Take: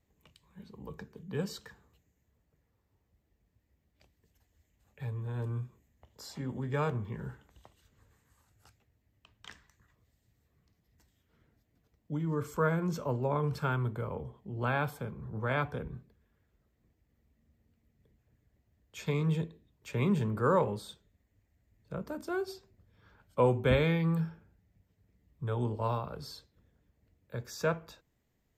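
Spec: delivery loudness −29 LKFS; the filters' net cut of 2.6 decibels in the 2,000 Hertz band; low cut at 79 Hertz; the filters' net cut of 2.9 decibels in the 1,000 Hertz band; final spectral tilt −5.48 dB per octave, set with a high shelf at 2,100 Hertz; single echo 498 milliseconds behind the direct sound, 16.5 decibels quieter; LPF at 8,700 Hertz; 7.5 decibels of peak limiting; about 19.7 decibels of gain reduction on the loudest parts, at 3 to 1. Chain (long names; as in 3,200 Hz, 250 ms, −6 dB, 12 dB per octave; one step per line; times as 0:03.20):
high-pass filter 79 Hz
low-pass filter 8,700 Hz
parametric band 1,000 Hz −3.5 dB
parametric band 2,000 Hz −5.5 dB
high-shelf EQ 2,100 Hz +6 dB
downward compressor 3 to 1, threshold −50 dBFS
brickwall limiter −40.5 dBFS
single-tap delay 498 ms −16.5 dB
level +22.5 dB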